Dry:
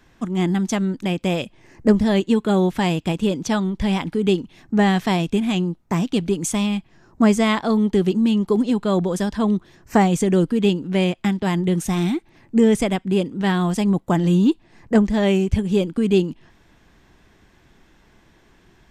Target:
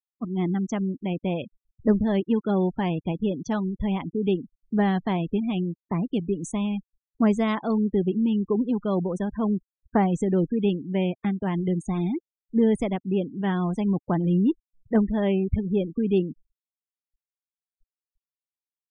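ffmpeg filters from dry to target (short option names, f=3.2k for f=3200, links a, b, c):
-af "afftfilt=real='re*gte(hypot(re,im),0.0501)':imag='im*gte(hypot(re,im),0.0501)':win_size=1024:overlap=0.75,highshelf=f=2.2k:g=-8.5,volume=-5dB"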